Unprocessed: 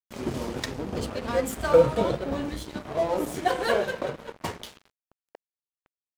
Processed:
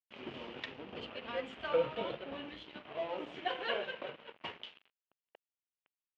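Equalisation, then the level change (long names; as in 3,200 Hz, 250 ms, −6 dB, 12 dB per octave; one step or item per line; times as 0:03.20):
high-pass filter 330 Hz 6 dB per octave
transistor ladder low-pass 3,200 Hz, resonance 65%
−1.0 dB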